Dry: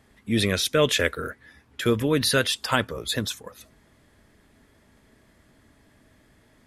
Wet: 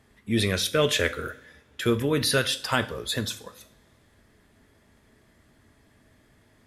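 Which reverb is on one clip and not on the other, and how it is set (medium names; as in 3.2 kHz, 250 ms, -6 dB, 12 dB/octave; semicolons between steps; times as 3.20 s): two-slope reverb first 0.46 s, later 2 s, from -21 dB, DRR 8.5 dB; trim -2 dB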